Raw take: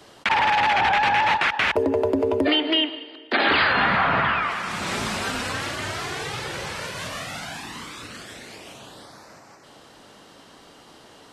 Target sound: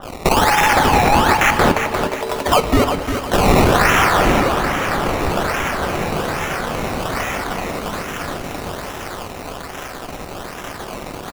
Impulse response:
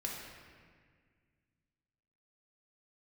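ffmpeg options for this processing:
-filter_complex "[0:a]aeval=exprs='val(0)+0.5*0.0158*sgn(val(0))':channel_layout=same,highpass=850,highshelf=frequency=7700:gain=11.5,acrusher=samples=19:mix=1:aa=0.000001:lfo=1:lforange=19:lforate=1.2,aecho=1:1:353|706|1059|1412:0.398|0.139|0.0488|0.0171,asplit=2[link_01][link_02];[1:a]atrim=start_sample=2205,asetrate=83790,aresample=44100[link_03];[link_02][link_03]afir=irnorm=-1:irlink=0,volume=-4.5dB[link_04];[link_01][link_04]amix=inputs=2:normalize=0,adynamicequalizer=threshold=0.0178:dfrequency=3500:dqfactor=0.7:tfrequency=3500:tqfactor=0.7:attack=5:release=100:ratio=0.375:range=4:mode=cutabove:tftype=highshelf,volume=5dB"

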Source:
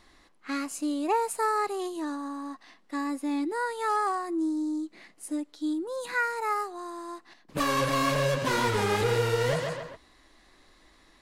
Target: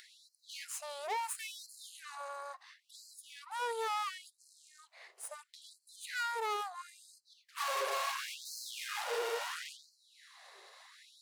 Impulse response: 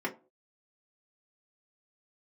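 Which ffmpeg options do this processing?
-filter_complex "[0:a]aeval=exprs='(tanh(44.7*val(0)+0.8)-tanh(0.8))/44.7':channel_layout=same,acompressor=mode=upward:threshold=-45dB:ratio=2.5,asplit=2[link_01][link_02];[1:a]atrim=start_sample=2205,lowpass=frequency=2400:width=0.5412,lowpass=frequency=2400:width=1.3066[link_03];[link_02][link_03]afir=irnorm=-1:irlink=0,volume=-20.5dB[link_04];[link_01][link_04]amix=inputs=2:normalize=0,afftfilt=real='re*gte(b*sr/1024,370*pow(4100/370,0.5+0.5*sin(2*PI*0.73*pts/sr)))':imag='im*gte(b*sr/1024,370*pow(4100/370,0.5+0.5*sin(2*PI*0.73*pts/sr)))':win_size=1024:overlap=0.75,volume=1dB"

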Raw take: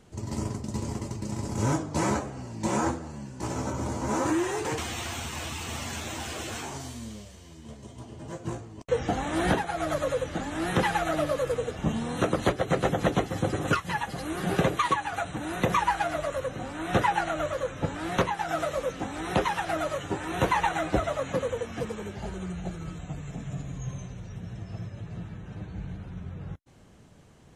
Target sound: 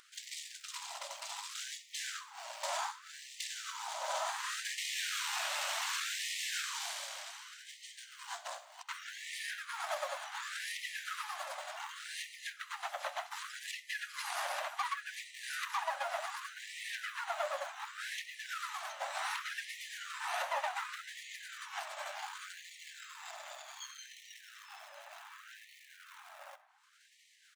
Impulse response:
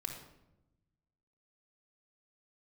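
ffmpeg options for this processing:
-filter_complex "[0:a]bandreject=frequency=205.1:width_type=h:width=4,bandreject=frequency=410.2:width_type=h:width=4,bandreject=frequency=615.3:width_type=h:width=4,alimiter=limit=-16.5dB:level=0:latency=1:release=275,equalizer=frequency=290:width=0.7:gain=-8,acompressor=threshold=-43dB:ratio=6,agate=range=-33dB:threshold=-43dB:ratio=3:detection=peak,acompressor=mode=upward:threshold=-55dB:ratio=2.5,acrusher=bits=7:mode=log:mix=0:aa=0.000001,aeval=exprs='(tanh(126*val(0)+0.55)-tanh(0.55))/126':channel_layout=same,asplit=3[link_01][link_02][link_03];[link_02]asetrate=22050,aresample=44100,atempo=2,volume=-1dB[link_04];[link_03]asetrate=29433,aresample=44100,atempo=1.49831,volume=-4dB[link_05];[link_01][link_04][link_05]amix=inputs=3:normalize=0,asplit=2[link_06][link_07];[link_07]adelay=991.3,volume=-14dB,highshelf=frequency=4000:gain=-22.3[link_08];[link_06][link_08]amix=inputs=2:normalize=0,asplit=2[link_09][link_10];[1:a]atrim=start_sample=2205,adelay=65[link_11];[link_10][link_11]afir=irnorm=-1:irlink=0,volume=-16.5dB[link_12];[link_09][link_12]amix=inputs=2:normalize=0,afftfilt=real='re*gte(b*sr/1024,530*pow(1800/530,0.5+0.5*sin(2*PI*0.67*pts/sr)))':imag='im*gte(b*sr/1024,530*pow(1800/530,0.5+0.5*sin(2*PI*0.67*pts/sr)))':win_size=1024:overlap=0.75,volume=12.5dB"

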